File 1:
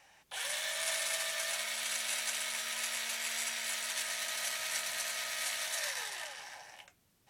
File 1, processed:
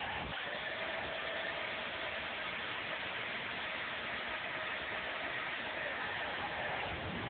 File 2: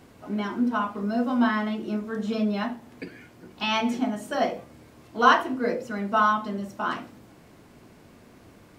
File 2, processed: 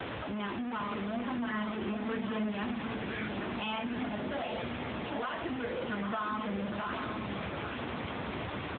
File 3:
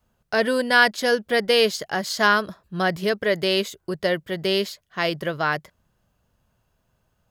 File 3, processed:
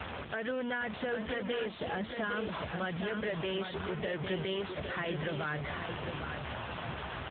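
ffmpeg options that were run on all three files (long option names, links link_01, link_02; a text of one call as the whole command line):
ffmpeg -i in.wav -filter_complex "[0:a]aeval=exprs='val(0)+0.5*0.0891*sgn(val(0))':channel_layout=same,aeval=exprs='val(0)+0.00282*sin(2*PI*1300*n/s)':channel_layout=same,asoftclip=type=tanh:threshold=-6.5dB,acompressor=threshold=-23dB:ratio=16,equalizer=frequency=63:width=1.5:gain=15,acrossover=split=510|1600[link_01][link_02][link_03];[link_01]acompressor=threshold=-33dB:ratio=4[link_04];[link_02]acompressor=threshold=-34dB:ratio=4[link_05];[link_03]acompressor=threshold=-31dB:ratio=4[link_06];[link_04][link_05][link_06]amix=inputs=3:normalize=0,aecho=1:1:806|1612|2418|3224:0.531|0.175|0.0578|0.0191,volume=-3.5dB" -ar 8000 -c:a libopencore_amrnb -b:a 6700 out.amr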